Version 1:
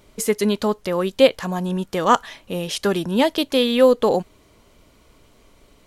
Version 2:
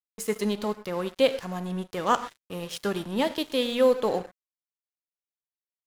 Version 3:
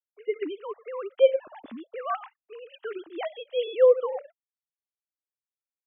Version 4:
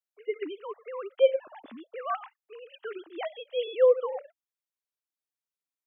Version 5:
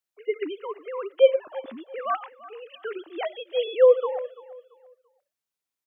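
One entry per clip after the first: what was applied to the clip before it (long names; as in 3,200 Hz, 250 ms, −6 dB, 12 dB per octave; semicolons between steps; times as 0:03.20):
reverb whose tail is shaped and stops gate 150 ms flat, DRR 10.5 dB; dead-zone distortion −33.5 dBFS; level −7 dB
three sine waves on the formant tracks
low-shelf EQ 200 Hz −11 dB; level −1 dB
repeating echo 338 ms, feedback 30%, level −18.5 dB; level +4.5 dB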